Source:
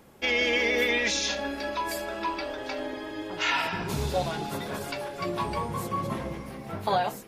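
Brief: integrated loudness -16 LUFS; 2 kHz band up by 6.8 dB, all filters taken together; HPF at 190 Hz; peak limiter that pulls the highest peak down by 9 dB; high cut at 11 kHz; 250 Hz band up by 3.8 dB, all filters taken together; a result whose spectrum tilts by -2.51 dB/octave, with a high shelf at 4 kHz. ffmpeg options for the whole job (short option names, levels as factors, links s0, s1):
-af "highpass=190,lowpass=11000,equalizer=f=250:t=o:g=6.5,equalizer=f=2000:t=o:g=5.5,highshelf=f=4000:g=9,volume=3.55,alimiter=limit=0.531:level=0:latency=1"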